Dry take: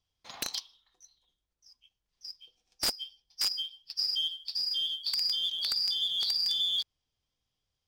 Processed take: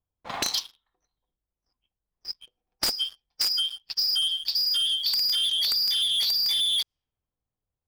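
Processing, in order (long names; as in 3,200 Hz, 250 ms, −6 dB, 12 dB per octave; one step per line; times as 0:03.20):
leveller curve on the samples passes 1
low-pass that shuts in the quiet parts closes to 1,000 Hz, open at −29.5 dBFS
leveller curve on the samples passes 2
downward compressor, threshold −28 dBFS, peak gain reduction 6 dB
level +4.5 dB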